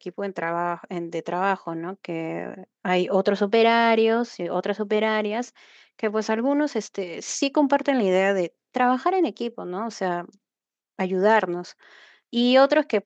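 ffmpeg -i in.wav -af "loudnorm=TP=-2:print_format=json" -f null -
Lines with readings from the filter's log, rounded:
"input_i" : "-23.1",
"input_tp" : "-5.8",
"input_lra" : "3.2",
"input_thresh" : "-33.7",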